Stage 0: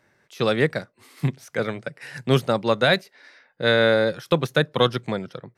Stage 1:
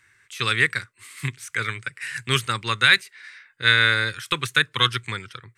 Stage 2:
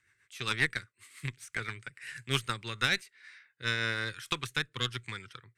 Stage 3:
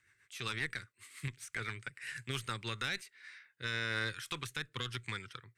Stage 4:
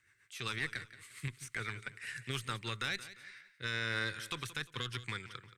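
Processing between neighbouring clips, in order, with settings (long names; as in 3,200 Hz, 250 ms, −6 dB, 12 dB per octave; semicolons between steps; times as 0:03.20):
drawn EQ curve 110 Hz 0 dB, 170 Hz −16 dB, 410 Hz −11 dB, 640 Hz −26 dB, 1,100 Hz −1 dB, 2,200 Hz +7 dB, 5,400 Hz 0 dB, 8,200 Hz +12 dB, 12,000 Hz +1 dB; level +2.5 dB
rotating-speaker cabinet horn 7.5 Hz, later 1 Hz, at 0:02.50; harmonic generator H 4 −16 dB, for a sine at −5 dBFS; level −8.5 dB
brickwall limiter −23.5 dBFS, peak gain reduction 10.5 dB
repeating echo 175 ms, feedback 34%, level −15 dB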